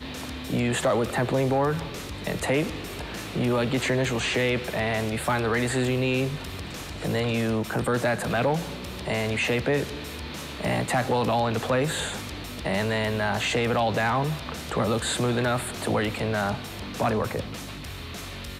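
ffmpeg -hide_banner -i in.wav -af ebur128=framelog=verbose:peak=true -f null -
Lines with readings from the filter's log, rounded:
Integrated loudness:
  I:         -26.5 LUFS
  Threshold: -36.5 LUFS
Loudness range:
  LRA:         1.6 LU
  Threshold: -46.3 LUFS
  LRA low:   -27.1 LUFS
  LRA high:  -25.5 LUFS
True peak:
  Peak:      -13.2 dBFS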